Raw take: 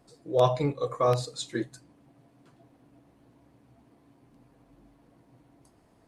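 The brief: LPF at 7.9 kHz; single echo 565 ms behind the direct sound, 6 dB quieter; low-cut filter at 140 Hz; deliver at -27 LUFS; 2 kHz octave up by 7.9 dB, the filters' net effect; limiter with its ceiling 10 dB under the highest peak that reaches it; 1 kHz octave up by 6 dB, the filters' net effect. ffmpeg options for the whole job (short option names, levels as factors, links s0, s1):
-af "highpass=140,lowpass=7900,equalizer=f=1000:t=o:g=5.5,equalizer=f=2000:t=o:g=8,alimiter=limit=0.141:level=0:latency=1,aecho=1:1:565:0.501,volume=1.33"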